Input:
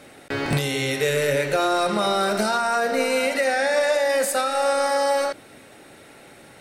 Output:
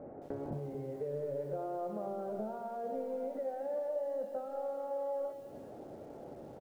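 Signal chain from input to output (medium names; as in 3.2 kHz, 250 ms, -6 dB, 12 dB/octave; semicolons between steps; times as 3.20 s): 2.00–4.60 s: bass shelf 260 Hz +4 dB; compression 5:1, threshold -38 dBFS, peak gain reduction 19 dB; four-pole ladder low-pass 840 Hz, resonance 30%; feedback comb 72 Hz, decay 0.6 s, harmonics all, mix 40%; delay 154 ms -22.5 dB; bit-crushed delay 217 ms, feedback 35%, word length 11-bit, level -12 dB; trim +9 dB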